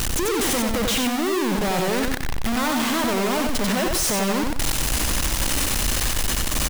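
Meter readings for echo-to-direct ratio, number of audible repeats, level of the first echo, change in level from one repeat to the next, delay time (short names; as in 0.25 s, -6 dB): -3.5 dB, 3, -4.0 dB, -10.5 dB, 92 ms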